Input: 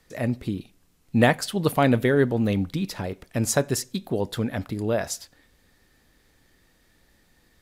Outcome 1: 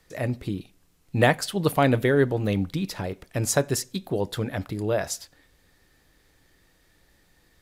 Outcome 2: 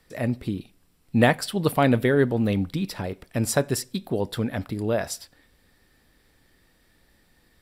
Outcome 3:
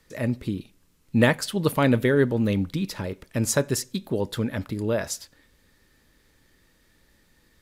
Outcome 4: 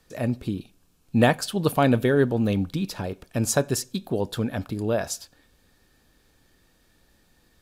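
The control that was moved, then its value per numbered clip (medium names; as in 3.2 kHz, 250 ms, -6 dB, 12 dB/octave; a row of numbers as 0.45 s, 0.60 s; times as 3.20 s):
band-stop, frequency: 230 Hz, 6.5 kHz, 730 Hz, 2 kHz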